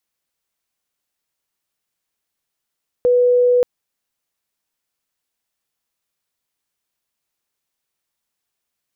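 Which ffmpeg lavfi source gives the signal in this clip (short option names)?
-f lavfi -i "aevalsrc='0.299*sin(2*PI*492*t)':d=0.58:s=44100"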